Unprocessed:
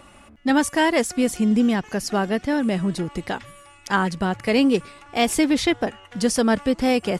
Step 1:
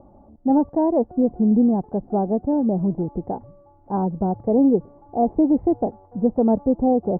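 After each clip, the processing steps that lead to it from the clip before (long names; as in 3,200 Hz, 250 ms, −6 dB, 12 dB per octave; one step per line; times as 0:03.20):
elliptic low-pass filter 830 Hz, stop band 80 dB
level +2 dB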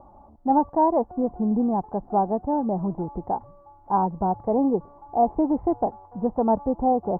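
graphic EQ with 10 bands 125 Hz −5 dB, 250 Hz −5 dB, 500 Hz −5 dB, 1,000 Hz +10 dB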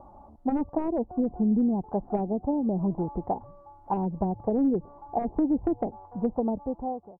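fade-out on the ending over 1.08 s
wave folding −16 dBFS
treble cut that deepens with the level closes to 400 Hz, closed at −20.5 dBFS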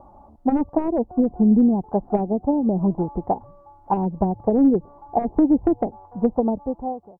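expander for the loud parts 1.5 to 1, over −34 dBFS
level +8.5 dB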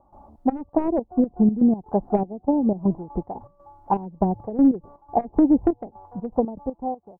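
gate pattern ".xxx..xx.x.x.x" 121 BPM −12 dB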